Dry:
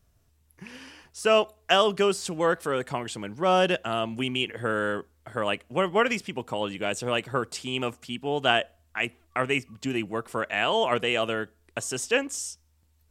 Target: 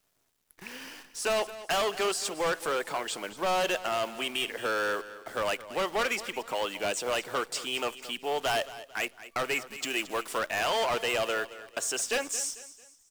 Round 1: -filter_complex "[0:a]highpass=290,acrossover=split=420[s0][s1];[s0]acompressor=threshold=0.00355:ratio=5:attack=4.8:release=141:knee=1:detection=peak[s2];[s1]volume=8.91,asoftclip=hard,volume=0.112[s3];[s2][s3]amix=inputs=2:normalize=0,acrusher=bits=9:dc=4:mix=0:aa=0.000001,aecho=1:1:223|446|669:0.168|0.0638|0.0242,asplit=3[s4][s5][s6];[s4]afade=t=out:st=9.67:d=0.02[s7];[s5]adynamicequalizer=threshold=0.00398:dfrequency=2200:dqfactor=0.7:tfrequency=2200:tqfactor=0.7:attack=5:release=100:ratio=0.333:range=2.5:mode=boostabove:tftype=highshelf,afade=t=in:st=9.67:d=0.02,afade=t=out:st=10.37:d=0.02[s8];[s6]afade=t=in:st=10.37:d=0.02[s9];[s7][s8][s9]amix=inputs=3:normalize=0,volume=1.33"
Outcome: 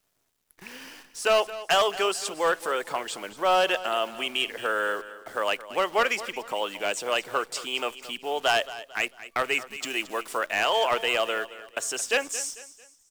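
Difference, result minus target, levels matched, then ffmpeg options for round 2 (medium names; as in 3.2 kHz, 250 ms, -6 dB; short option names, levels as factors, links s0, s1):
overload inside the chain: distortion -8 dB
-filter_complex "[0:a]highpass=290,acrossover=split=420[s0][s1];[s0]acompressor=threshold=0.00355:ratio=5:attack=4.8:release=141:knee=1:detection=peak[s2];[s1]volume=25.1,asoftclip=hard,volume=0.0398[s3];[s2][s3]amix=inputs=2:normalize=0,acrusher=bits=9:dc=4:mix=0:aa=0.000001,aecho=1:1:223|446|669:0.168|0.0638|0.0242,asplit=3[s4][s5][s6];[s4]afade=t=out:st=9.67:d=0.02[s7];[s5]adynamicequalizer=threshold=0.00398:dfrequency=2200:dqfactor=0.7:tfrequency=2200:tqfactor=0.7:attack=5:release=100:ratio=0.333:range=2.5:mode=boostabove:tftype=highshelf,afade=t=in:st=9.67:d=0.02,afade=t=out:st=10.37:d=0.02[s8];[s6]afade=t=in:st=10.37:d=0.02[s9];[s7][s8][s9]amix=inputs=3:normalize=0,volume=1.33"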